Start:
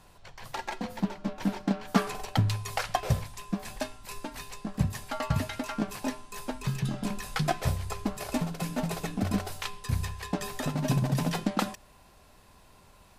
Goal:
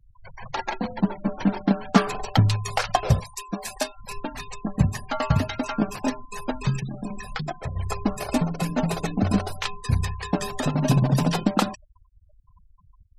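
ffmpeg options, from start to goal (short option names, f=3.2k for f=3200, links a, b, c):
-filter_complex "[0:a]asettb=1/sr,asplit=3[a][b][c];[a]atrim=end=3.204[d];[b]atrim=start=3.2:end=3.97,asetpts=PTS-STARTPTS,afade=t=in:d=0.004:c=qsin,afade=t=out:st=0.766:d=0.004:c=qsin,bass=f=250:g=-10,treble=f=4k:g=6[e];[c]atrim=start=3.966[f];[d][e]acrossfade=d=0.004:c1=hsin:c2=qsin[g];[g][f]acrossfade=d=0.004:c1=qsin:c2=hsin,asplit=3[h][i][j];[h]afade=t=out:st=6.79:d=0.02[k];[i]acompressor=threshold=-36dB:ratio=4,afade=t=in:st=6.79:d=0.02,afade=t=out:st=7.75:d=0.02[l];[j]afade=t=in:st=7.75:d=0.02[m];[k][l][m]amix=inputs=3:normalize=0,afftfilt=real='re*gte(hypot(re,im),0.00891)':imag='im*gte(hypot(re,im),0.00891)':win_size=1024:overlap=0.75,adynamicequalizer=threshold=0.00282:dfrequency=1900:dqfactor=2.5:tfrequency=1900:tqfactor=2.5:attack=5:release=100:ratio=0.375:range=2.5:mode=cutabove:tftype=bell,volume=7dB"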